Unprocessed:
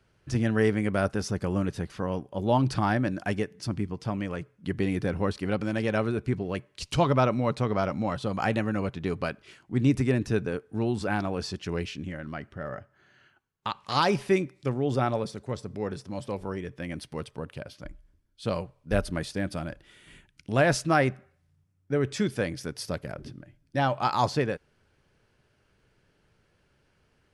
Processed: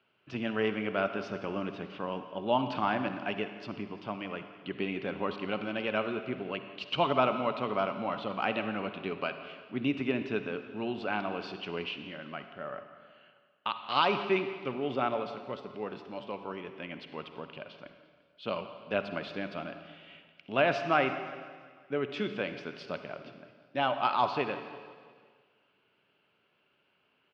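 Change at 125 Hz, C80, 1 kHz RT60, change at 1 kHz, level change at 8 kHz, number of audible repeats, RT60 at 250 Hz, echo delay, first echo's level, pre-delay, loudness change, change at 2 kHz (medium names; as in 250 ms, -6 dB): -14.5 dB, 10.0 dB, 1.7 s, -1.5 dB, under -20 dB, 4, 1.7 s, 171 ms, -18.5 dB, 39 ms, -4.5 dB, -2.0 dB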